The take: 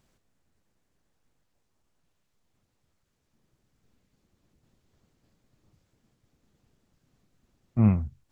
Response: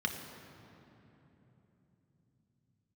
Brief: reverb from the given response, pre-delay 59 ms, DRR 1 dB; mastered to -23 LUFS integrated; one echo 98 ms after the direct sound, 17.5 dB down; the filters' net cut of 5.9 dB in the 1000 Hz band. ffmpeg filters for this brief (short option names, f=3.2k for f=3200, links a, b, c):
-filter_complex "[0:a]equalizer=f=1k:t=o:g=-8,aecho=1:1:98:0.133,asplit=2[a][b];[1:a]atrim=start_sample=2205,adelay=59[c];[b][c]afir=irnorm=-1:irlink=0,volume=-6.5dB[d];[a][d]amix=inputs=2:normalize=0,volume=-1.5dB"